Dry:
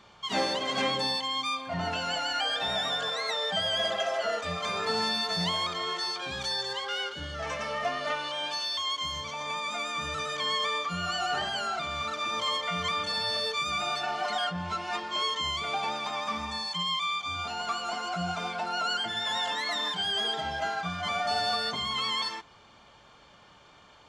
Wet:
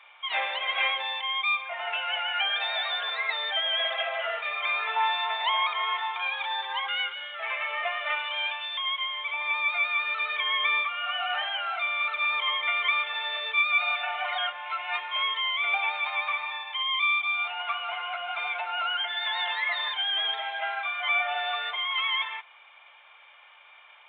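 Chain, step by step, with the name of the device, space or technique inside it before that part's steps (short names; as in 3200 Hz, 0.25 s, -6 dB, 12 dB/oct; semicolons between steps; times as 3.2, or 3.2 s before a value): 4.96–6.87 bell 930 Hz +12 dB 0.39 oct; musical greeting card (downsampling 8000 Hz; HPF 680 Hz 24 dB/oct; bell 2300 Hz +12 dB 0.44 oct)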